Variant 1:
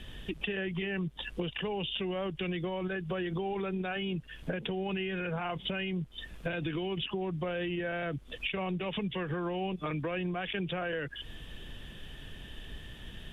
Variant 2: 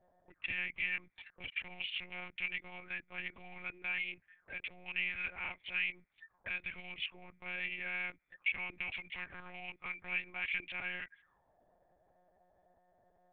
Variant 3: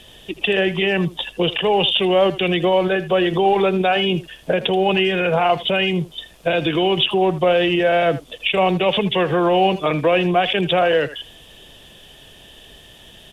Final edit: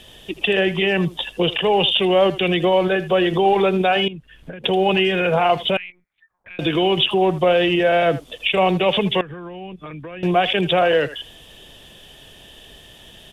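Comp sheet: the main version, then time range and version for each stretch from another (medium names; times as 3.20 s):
3
4.08–4.64 s: from 1
5.77–6.59 s: from 2
9.21–10.23 s: from 1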